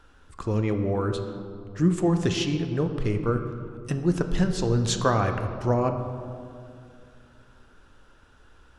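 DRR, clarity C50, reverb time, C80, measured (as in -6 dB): 6.0 dB, 8.0 dB, 2.4 s, 9.0 dB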